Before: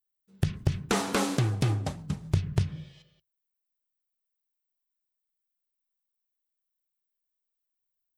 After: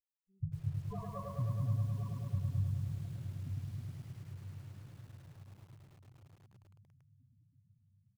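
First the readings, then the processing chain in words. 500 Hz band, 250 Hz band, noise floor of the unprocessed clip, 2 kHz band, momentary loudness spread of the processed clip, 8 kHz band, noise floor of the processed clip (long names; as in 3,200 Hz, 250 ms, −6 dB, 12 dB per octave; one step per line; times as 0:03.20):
−15.5 dB, −12.5 dB, −84 dBFS, below −20 dB, 19 LU, below −20 dB, −74 dBFS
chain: lower of the sound and its delayed copy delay 1.8 ms
low-shelf EQ 74 Hz −9 dB
comb filter 1.1 ms, depth 43%
feedback delay with all-pass diffusion 1,000 ms, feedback 53%, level −6 dB
spectral peaks only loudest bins 4
feedback echo at a low word length 105 ms, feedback 80%, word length 9 bits, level −3.5 dB
level −7.5 dB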